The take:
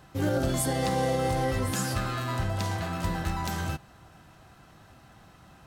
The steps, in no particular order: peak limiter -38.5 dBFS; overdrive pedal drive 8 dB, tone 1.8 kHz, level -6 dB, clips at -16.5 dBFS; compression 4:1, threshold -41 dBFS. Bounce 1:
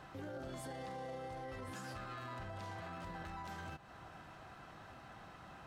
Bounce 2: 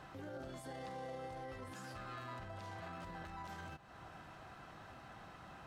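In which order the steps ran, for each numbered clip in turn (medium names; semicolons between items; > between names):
overdrive pedal > compression > peak limiter; compression > peak limiter > overdrive pedal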